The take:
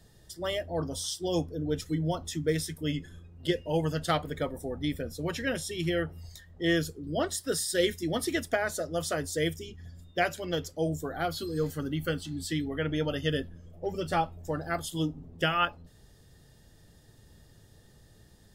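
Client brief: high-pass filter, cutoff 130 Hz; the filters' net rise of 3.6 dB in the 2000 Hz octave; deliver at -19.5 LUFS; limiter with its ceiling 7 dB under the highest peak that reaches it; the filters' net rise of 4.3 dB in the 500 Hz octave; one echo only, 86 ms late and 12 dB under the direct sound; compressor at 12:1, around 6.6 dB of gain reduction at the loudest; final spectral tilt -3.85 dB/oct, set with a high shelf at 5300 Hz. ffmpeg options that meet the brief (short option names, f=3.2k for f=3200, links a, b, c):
-af "highpass=130,equalizer=f=500:t=o:g=5,equalizer=f=2k:t=o:g=3.5,highshelf=f=5.3k:g=5,acompressor=threshold=-25dB:ratio=12,alimiter=limit=-21.5dB:level=0:latency=1,aecho=1:1:86:0.251,volume=13.5dB"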